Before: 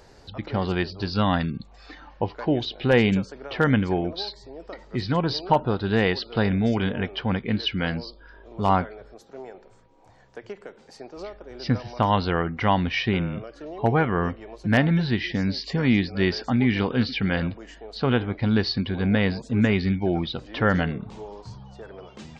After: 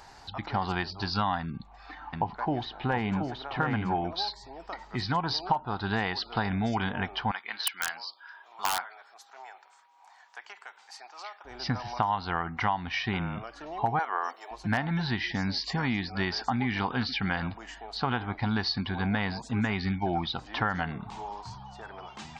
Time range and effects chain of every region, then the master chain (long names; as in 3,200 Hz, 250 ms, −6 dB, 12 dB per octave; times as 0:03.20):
0:01.40–0:03.95: low-pass filter 1,500 Hz 6 dB per octave + single-tap delay 726 ms −6 dB
0:07.31–0:11.45: high-pass filter 1,000 Hz + wrap-around overflow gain 16 dB
0:13.99–0:14.51: high-pass filter 430 Hz 24 dB per octave + high shelf with overshoot 3,800 Hz +10 dB, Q 1.5
whole clip: low shelf with overshoot 650 Hz −7 dB, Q 3; downward compressor, threshold −26 dBFS; dynamic equaliser 2,700 Hz, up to −5 dB, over −46 dBFS, Q 1.2; level +2.5 dB